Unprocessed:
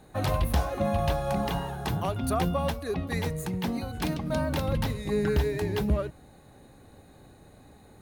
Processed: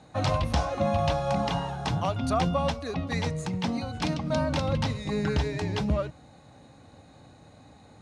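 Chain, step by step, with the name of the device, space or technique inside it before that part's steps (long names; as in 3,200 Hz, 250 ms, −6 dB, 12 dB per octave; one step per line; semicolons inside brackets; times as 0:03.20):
car door speaker (loudspeaker in its box 83–7,500 Hz, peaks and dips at 200 Hz −3 dB, 390 Hz −10 dB, 1,700 Hz −4 dB, 5,400 Hz +3 dB)
level +3 dB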